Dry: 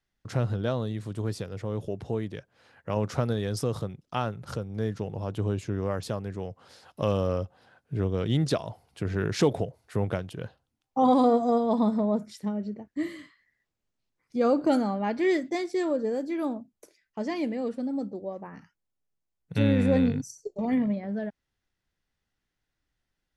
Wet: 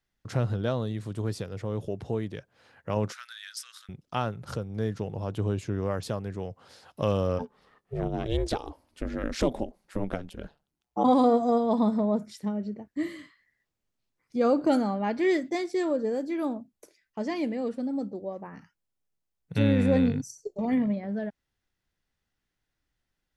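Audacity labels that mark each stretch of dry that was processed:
3.120000	3.890000	Chebyshev high-pass 1500 Hz, order 4
7.380000	11.030000	ring modulator 350 Hz -> 57 Hz

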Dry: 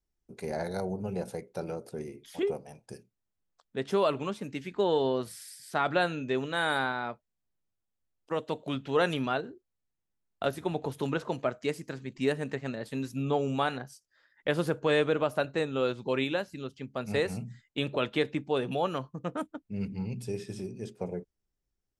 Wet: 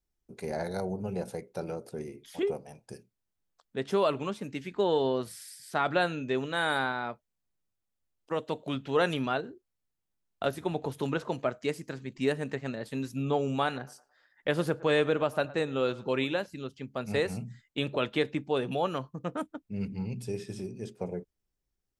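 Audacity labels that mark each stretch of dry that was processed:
13.650000	16.460000	narrowing echo 0.11 s, feedback 42%, band-pass 900 Hz, level -18 dB

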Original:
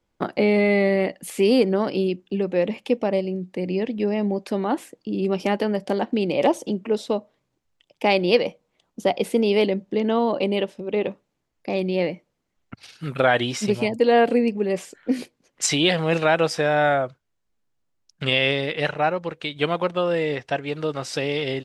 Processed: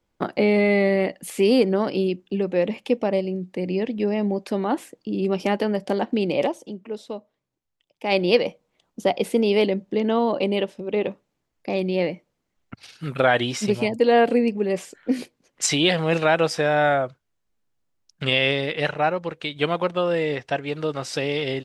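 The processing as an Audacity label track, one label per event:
6.430000	8.130000	dip -9 dB, fades 0.35 s exponential

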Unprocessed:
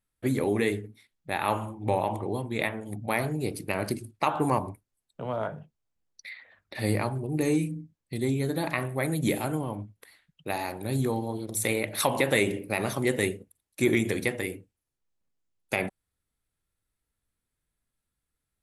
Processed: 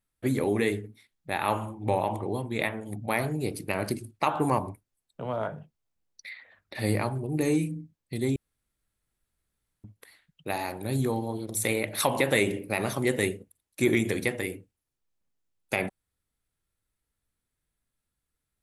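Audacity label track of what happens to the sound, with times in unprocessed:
8.360000	9.840000	room tone

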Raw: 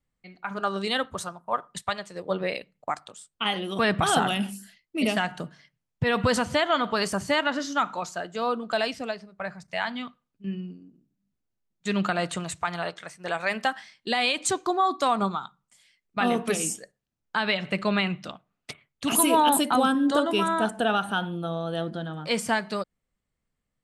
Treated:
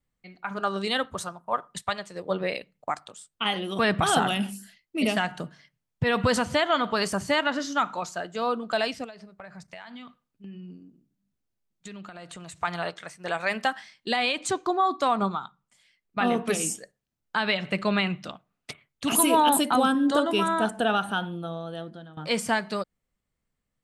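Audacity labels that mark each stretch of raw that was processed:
9.040000	12.630000	compressor 12:1, threshold -38 dBFS
14.160000	16.490000	high shelf 5500 Hz -8 dB
21.020000	22.170000	fade out linear, to -14.5 dB

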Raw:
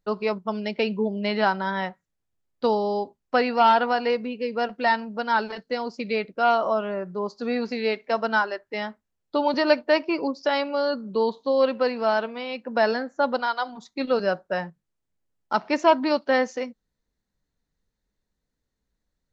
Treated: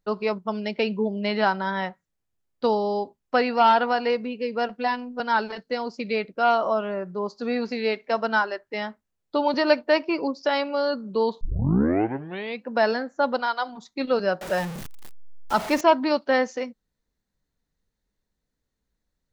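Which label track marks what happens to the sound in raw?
4.780000	5.200000	robotiser 247 Hz
11.410000	11.410000	tape start 1.23 s
14.410000	15.810000	zero-crossing step of -28.5 dBFS

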